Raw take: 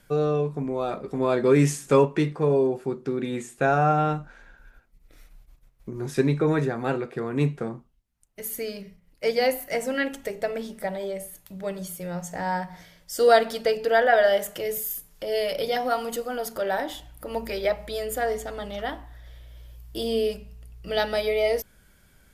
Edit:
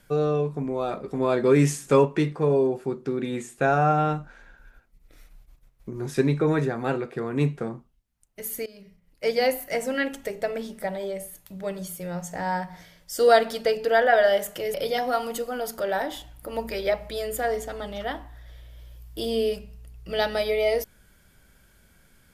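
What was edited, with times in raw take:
8.66–9.43 s: fade in equal-power, from -18.5 dB
14.74–15.52 s: delete

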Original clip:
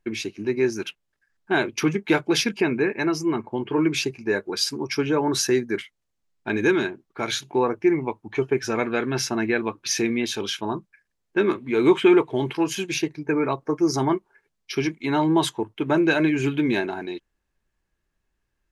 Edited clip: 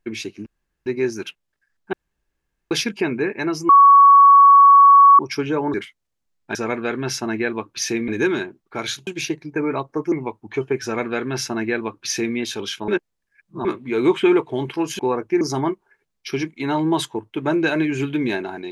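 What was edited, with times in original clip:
0.46 s: insert room tone 0.40 s
1.53–2.31 s: room tone
3.29–4.79 s: bleep 1.12 kHz -6 dBFS
5.34–5.71 s: delete
7.51–7.93 s: swap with 12.80–13.85 s
8.64–10.17 s: copy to 6.52 s
10.69–11.46 s: reverse

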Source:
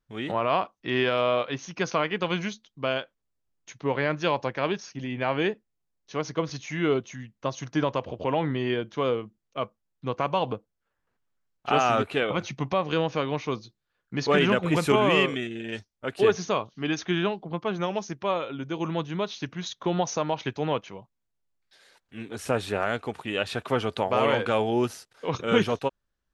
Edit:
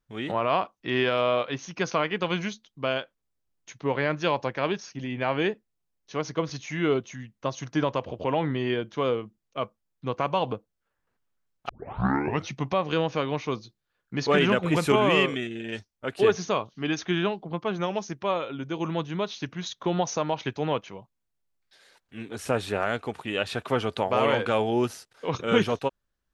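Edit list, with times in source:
11.69 s: tape start 0.80 s

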